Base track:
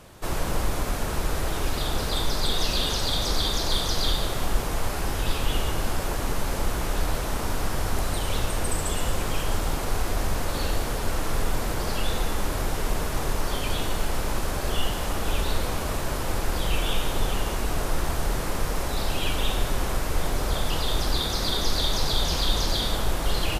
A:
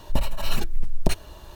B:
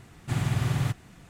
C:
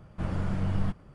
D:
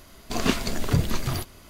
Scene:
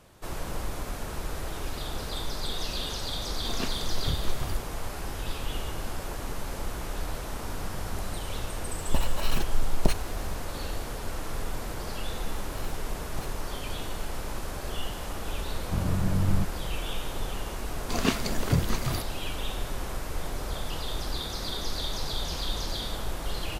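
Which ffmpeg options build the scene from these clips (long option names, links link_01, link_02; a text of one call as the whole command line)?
ffmpeg -i bed.wav -i cue0.wav -i cue1.wav -i cue2.wav -i cue3.wav -filter_complex "[4:a]asplit=2[link_01][link_02];[3:a]asplit=2[link_03][link_04];[1:a]asplit=2[link_05][link_06];[0:a]volume=-7.5dB[link_07];[link_01]asubboost=boost=9:cutoff=77[link_08];[link_05]aeval=exprs='clip(val(0),-1,0.2)':channel_layout=same[link_09];[link_04]lowshelf=frequency=480:gain=7[link_10];[link_08]atrim=end=1.69,asetpts=PTS-STARTPTS,volume=-10.5dB,afade=type=in:duration=0.004:curve=hsin,afade=type=out:start_time=1.686:duration=0.004:curve=hsin,adelay=3140[link_11];[link_03]atrim=end=1.14,asetpts=PTS-STARTPTS,volume=-15.5dB,afade=type=in:duration=0.004:curve=hsin,afade=type=out:start_time=1.136:duration=0.004:curve=hsin,adelay=7260[link_12];[link_09]atrim=end=1.55,asetpts=PTS-STARTPTS,volume=-2dB,afade=type=in:duration=0.004:curve=hsin,afade=type=out:start_time=1.546:duration=0.004:curve=hsin,adelay=8790[link_13];[link_06]atrim=end=1.55,asetpts=PTS-STARTPTS,volume=-17dB,afade=type=in:duration=0.004:curve=hsin,afade=type=out:start_time=1.546:duration=0.004:curve=hsin,adelay=12120[link_14];[link_10]atrim=end=1.14,asetpts=PTS-STARTPTS,volume=-3.5dB,afade=type=in:duration=0.004:curve=hsin,afade=type=out:start_time=1.136:duration=0.004:curve=hsin,adelay=15530[link_15];[link_02]atrim=end=1.69,asetpts=PTS-STARTPTS,volume=-2.5dB,afade=type=in:duration=0.004:curve=hsin,afade=type=out:start_time=1.686:duration=0.004:curve=hsin,adelay=17590[link_16];[link_07][link_11][link_12][link_13][link_14][link_15][link_16]amix=inputs=7:normalize=0" out.wav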